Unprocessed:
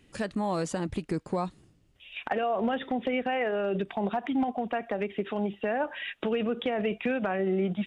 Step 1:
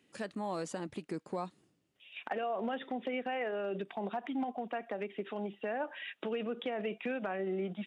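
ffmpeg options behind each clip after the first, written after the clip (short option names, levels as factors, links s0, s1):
-af "highpass=200,volume=0.447"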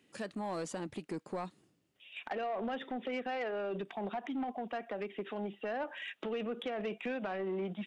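-af "asoftclip=type=tanh:threshold=0.0282,volume=1.12"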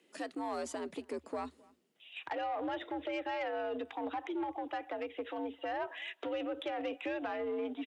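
-filter_complex "[0:a]afreqshift=74,asplit=2[s0][s1];[s1]adelay=262.4,volume=0.0562,highshelf=f=4000:g=-5.9[s2];[s0][s2]amix=inputs=2:normalize=0"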